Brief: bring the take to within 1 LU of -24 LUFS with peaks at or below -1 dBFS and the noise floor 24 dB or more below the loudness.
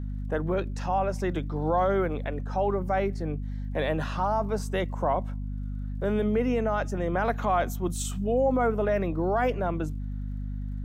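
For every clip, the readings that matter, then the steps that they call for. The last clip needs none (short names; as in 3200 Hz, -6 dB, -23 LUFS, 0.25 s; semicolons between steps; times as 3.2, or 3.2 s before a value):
ticks 33/s; hum 50 Hz; harmonics up to 250 Hz; hum level -30 dBFS; loudness -28.5 LUFS; peak -13.5 dBFS; loudness target -24.0 LUFS
-> de-click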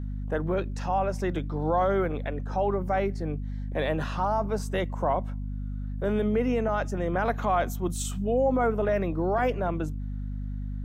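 ticks 0/s; hum 50 Hz; harmonics up to 250 Hz; hum level -30 dBFS
-> de-hum 50 Hz, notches 5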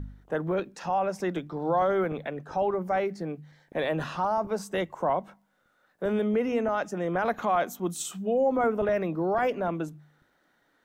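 hum none; loudness -28.5 LUFS; peak -14.0 dBFS; loudness target -24.0 LUFS
-> gain +4.5 dB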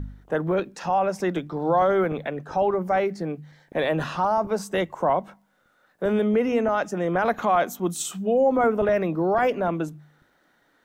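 loudness -24.0 LUFS; peak -9.5 dBFS; noise floor -65 dBFS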